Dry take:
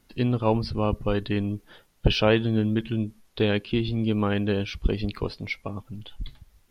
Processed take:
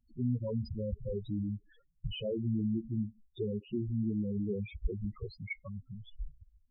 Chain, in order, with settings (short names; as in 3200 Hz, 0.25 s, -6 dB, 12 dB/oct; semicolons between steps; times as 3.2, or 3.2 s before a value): limiter -16 dBFS, peak gain reduction 10 dB; loudest bins only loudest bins 4; gain -5.5 dB